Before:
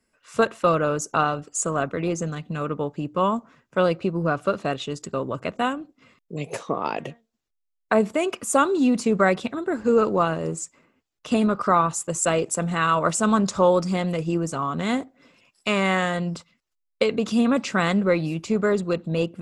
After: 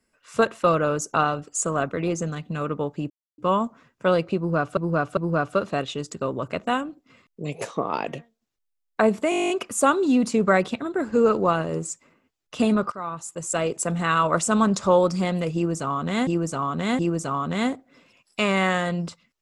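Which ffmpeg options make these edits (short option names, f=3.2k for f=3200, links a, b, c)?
-filter_complex "[0:a]asplit=17[a][b][c][d][e][f][g][h][i][j][k][l][m][n][o][p][q];[a]atrim=end=3.1,asetpts=PTS-STARTPTS,afade=t=out:st=3.096:d=0.004:c=hsin,apad=pad_dur=0.28[r];[b]atrim=start=3.1:end=4.492,asetpts=PTS-STARTPTS,afade=t=in:d=0.004:c=hsin[s];[c]atrim=start=4.088:end=4.492[t];[d]atrim=start=4.088:end=8.242[u];[e]atrim=start=8.218:end=8.242[v];[f]atrim=start=8.218:end=8.242[w];[g]atrim=start=8.218:end=8.242[x];[h]atrim=start=8.218:end=8.242[y];[i]atrim=start=8.218:end=8.242[z];[j]atrim=start=8.218:end=8.242[aa];[k]atrim=start=8.218:end=8.242[ab];[l]atrim=start=8.218:end=8.242[ac];[m]atrim=start=8.218:end=8.242[ad];[n]atrim=start=8.218:end=11.64,asetpts=PTS-STARTPTS,afade=t=out:st=3.418:d=0.004:c=hsin:silence=0.112202[ae];[o]atrim=start=11.64:end=14.992,asetpts=PTS-STARTPTS,afade=t=in:d=1.01:silence=0.112202[af];[p]atrim=start=14.268:end=14.992[ag];[q]atrim=start=14.268[ah];[r][s]concat=n=2:v=0:a=1[ai];[ai][t]acrossfade=d=0.004:c1=hsin:c2=hsin[aj];[aj][u]acrossfade=d=0.004:c1=hsin:c2=hsin[ak];[ak][v]acrossfade=d=0.004:c1=hsin:c2=hsin[al];[al][w]acrossfade=d=0.004:c1=hsin:c2=hsin[am];[am][x]acrossfade=d=0.004:c1=hsin:c2=hsin[an];[an][y]acrossfade=d=0.004:c1=hsin:c2=hsin[ao];[ao][z]acrossfade=d=0.004:c1=hsin:c2=hsin[ap];[ap][aa]acrossfade=d=0.004:c1=hsin:c2=hsin[aq];[aq][ab]acrossfade=d=0.004:c1=hsin:c2=hsin[ar];[ar][ac]acrossfade=d=0.004:c1=hsin:c2=hsin[as];[as][ad]acrossfade=d=0.004:c1=hsin:c2=hsin[at];[ae][af]concat=n=2:v=0:a=1[au];[at][au]acrossfade=d=0.004:c1=hsin:c2=hsin[av];[av][ag]acrossfade=d=0.004:c1=hsin:c2=hsin[aw];[aw][ah]acrossfade=d=0.004:c1=hsin:c2=hsin"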